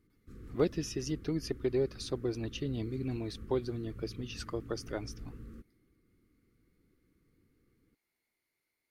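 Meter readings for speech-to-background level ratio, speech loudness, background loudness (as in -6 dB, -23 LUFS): 14.0 dB, -36.0 LUFS, -50.0 LUFS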